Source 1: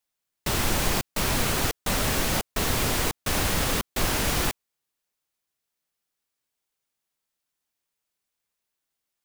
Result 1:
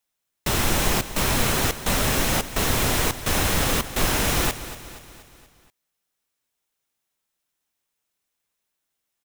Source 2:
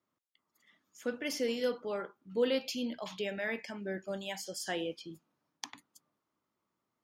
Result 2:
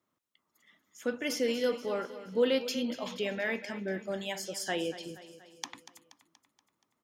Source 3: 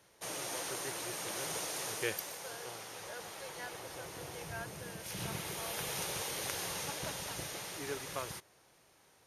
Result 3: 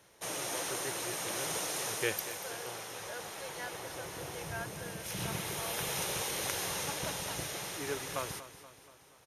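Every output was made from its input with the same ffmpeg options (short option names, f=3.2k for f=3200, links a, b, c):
-af "bandreject=f=4.6k:w=17,aecho=1:1:238|476|714|952|1190:0.2|0.108|0.0582|0.0314|0.017,volume=3dB"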